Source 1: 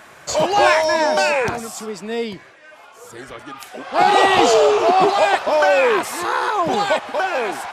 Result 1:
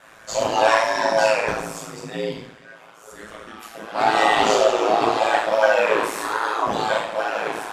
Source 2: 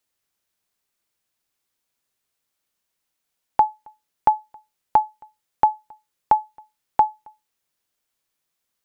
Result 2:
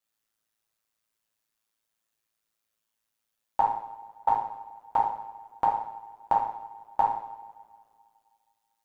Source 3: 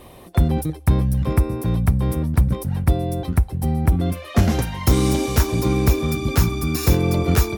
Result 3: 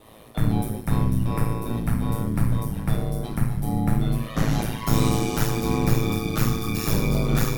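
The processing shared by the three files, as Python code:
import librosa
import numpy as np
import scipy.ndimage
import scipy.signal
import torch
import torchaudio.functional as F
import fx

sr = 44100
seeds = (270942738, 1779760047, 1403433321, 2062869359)

y = fx.rev_double_slope(x, sr, seeds[0], early_s=0.65, late_s=2.2, knee_db=-19, drr_db=-6.5)
y = y * np.sin(2.0 * np.pi * 55.0 * np.arange(len(y)) / sr)
y = y * librosa.db_to_amplitude(-7.5)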